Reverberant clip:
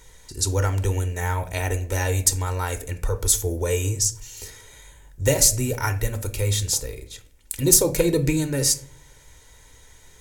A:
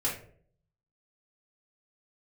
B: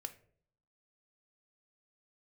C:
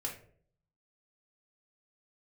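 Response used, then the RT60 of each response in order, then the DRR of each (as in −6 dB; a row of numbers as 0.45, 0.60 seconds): B; 0.55, 0.55, 0.55 seconds; −6.0, 8.5, −1.5 decibels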